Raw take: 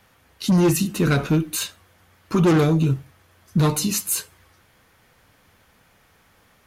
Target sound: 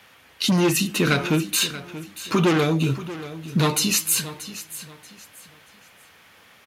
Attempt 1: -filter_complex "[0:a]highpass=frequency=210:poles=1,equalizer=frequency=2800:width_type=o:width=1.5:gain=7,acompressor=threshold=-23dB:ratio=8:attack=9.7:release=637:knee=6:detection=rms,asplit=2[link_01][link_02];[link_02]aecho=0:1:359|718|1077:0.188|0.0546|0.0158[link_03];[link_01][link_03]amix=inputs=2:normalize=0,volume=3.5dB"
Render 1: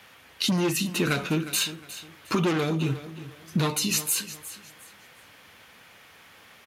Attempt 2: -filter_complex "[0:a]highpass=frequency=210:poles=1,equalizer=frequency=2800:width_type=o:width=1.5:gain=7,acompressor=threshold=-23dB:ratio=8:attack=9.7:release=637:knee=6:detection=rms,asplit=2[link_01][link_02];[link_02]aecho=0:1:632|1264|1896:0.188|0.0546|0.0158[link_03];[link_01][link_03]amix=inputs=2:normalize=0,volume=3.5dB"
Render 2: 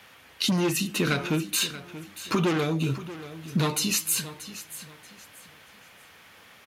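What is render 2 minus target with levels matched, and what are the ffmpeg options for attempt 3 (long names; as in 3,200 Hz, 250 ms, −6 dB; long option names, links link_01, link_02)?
downward compressor: peak gain reduction +6 dB
-filter_complex "[0:a]highpass=frequency=210:poles=1,equalizer=frequency=2800:width_type=o:width=1.5:gain=7,acompressor=threshold=-16dB:ratio=8:attack=9.7:release=637:knee=6:detection=rms,asplit=2[link_01][link_02];[link_02]aecho=0:1:632|1264|1896:0.188|0.0546|0.0158[link_03];[link_01][link_03]amix=inputs=2:normalize=0,volume=3.5dB"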